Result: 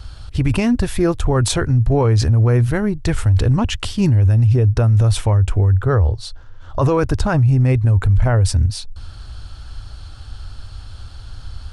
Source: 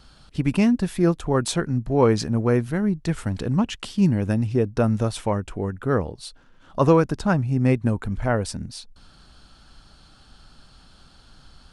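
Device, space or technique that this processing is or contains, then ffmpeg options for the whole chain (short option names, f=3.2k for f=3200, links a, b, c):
car stereo with a boomy subwoofer: -filter_complex "[0:a]asettb=1/sr,asplit=3[a][b][c];[a]atrim=end=5.744[d];[b]atrim=start=5.74:end=6.81,asetpts=PTS-STARTPTS,afade=t=in:d=0.004:c=qsin,afade=t=out:st=1.066:d=0.004:c=qsin,equalizer=f=250:t=o:w=0.67:g=-7,equalizer=f=2.5k:t=o:w=0.67:g=-6,equalizer=f=10k:t=o:w=0.67:g=-9[e];[c]atrim=start=6.806[f];[d][e]acrossfade=d=0.004:c1=hsin:c2=qsin[g];[g][f]acrossfade=d=0.004:c1=qsin:c2=hsin,lowshelf=f=130:t=q:w=3:g=10,alimiter=limit=-16.5dB:level=0:latency=1:release=15,volume=8dB"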